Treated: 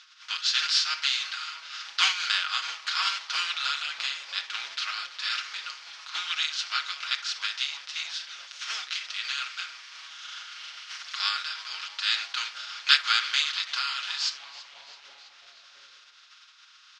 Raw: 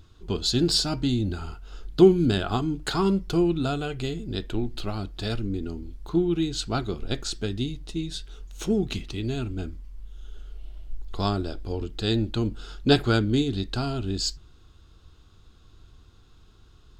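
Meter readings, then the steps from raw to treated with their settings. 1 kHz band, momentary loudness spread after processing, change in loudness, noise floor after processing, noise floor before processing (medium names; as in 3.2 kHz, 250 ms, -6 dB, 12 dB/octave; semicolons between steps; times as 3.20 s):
0.0 dB, 16 LU, -1.5 dB, -55 dBFS, -54 dBFS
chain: spectral contrast reduction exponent 0.48; elliptic band-pass 1.3–5.6 kHz, stop band 80 dB; comb 6.4 ms, depth 75%; on a send: frequency-shifting echo 330 ms, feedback 64%, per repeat -140 Hz, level -18 dB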